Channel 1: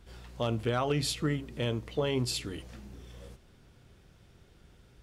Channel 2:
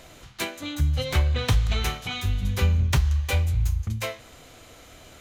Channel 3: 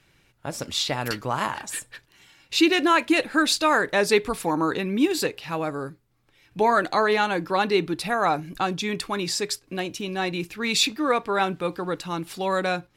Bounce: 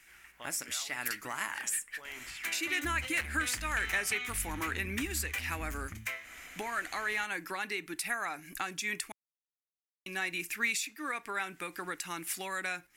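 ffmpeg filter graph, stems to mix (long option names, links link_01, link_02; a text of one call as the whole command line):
ffmpeg -i stem1.wav -i stem2.wav -i stem3.wav -filter_complex "[0:a]equalizer=frequency=1600:width=0.31:gain=13,volume=-14dB[link_01];[1:a]asoftclip=type=hard:threshold=-23dB,adelay=2050,volume=1.5dB[link_02];[2:a]bass=frequency=250:gain=-8,treble=frequency=4000:gain=13,acompressor=threshold=-28dB:ratio=6,volume=-2dB,asplit=3[link_03][link_04][link_05];[link_03]atrim=end=9.12,asetpts=PTS-STARTPTS,afade=type=out:start_time=9.116:duration=0.004:curve=hsin[link_06];[link_04]atrim=start=9.12:end=10.06,asetpts=PTS-STARTPTS,volume=0[link_07];[link_05]atrim=start=10.06,asetpts=PTS-STARTPTS,afade=type=in:duration=0.004:curve=hsin[link_08];[link_06][link_07][link_08]concat=n=3:v=0:a=1,asplit=2[link_09][link_10];[link_10]apad=whole_len=221592[link_11];[link_01][link_11]sidechaincompress=threshold=-41dB:ratio=4:attack=16:release=626[link_12];[link_12][link_02]amix=inputs=2:normalize=0,lowshelf=frequency=340:gain=-10.5,acompressor=threshold=-36dB:ratio=6,volume=0dB[link_13];[link_09][link_13]amix=inputs=2:normalize=0,equalizer=frequency=125:width_type=o:width=1:gain=-9,equalizer=frequency=500:width_type=o:width=1:gain=-11,equalizer=frequency=1000:width_type=o:width=1:gain=-5,equalizer=frequency=2000:width_type=o:width=1:gain=11,equalizer=frequency=4000:width_type=o:width=1:gain=-11" out.wav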